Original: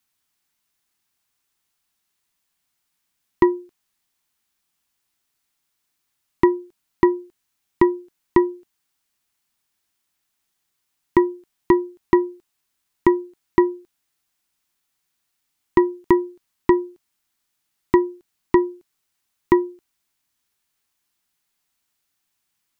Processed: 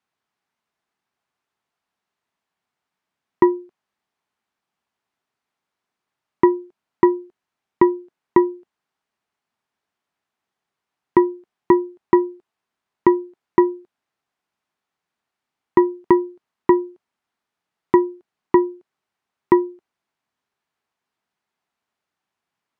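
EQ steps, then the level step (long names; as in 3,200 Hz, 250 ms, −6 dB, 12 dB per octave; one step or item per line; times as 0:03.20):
resonant band-pass 500 Hz, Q 0.55
parametric band 310 Hz −5.5 dB 0.43 octaves
+5.0 dB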